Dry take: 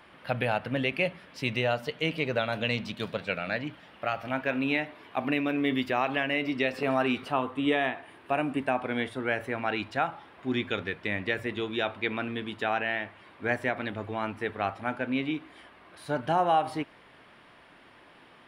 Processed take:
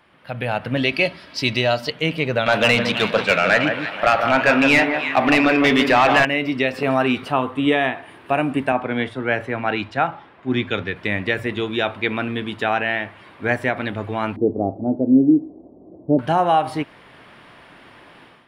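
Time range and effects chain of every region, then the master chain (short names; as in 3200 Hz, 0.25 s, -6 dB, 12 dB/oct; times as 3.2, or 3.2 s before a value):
0.77–1.9 bell 4700 Hz +13 dB 0.61 oct + comb 3.1 ms, depth 40%
2.46–6.25 echo with dull and thin repeats by turns 0.159 s, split 1700 Hz, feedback 55%, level -8 dB + overdrive pedal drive 19 dB, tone 3300 Hz, clips at -11.5 dBFS
8.72–10.96 air absorption 59 m + three-band expander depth 40%
14.36–16.19 steep low-pass 690 Hz + bell 300 Hz +11.5 dB 1.1 oct + mismatched tape noise reduction decoder only
whole clip: bell 130 Hz +3 dB 1.1 oct; AGC gain up to 11.5 dB; gain -2.5 dB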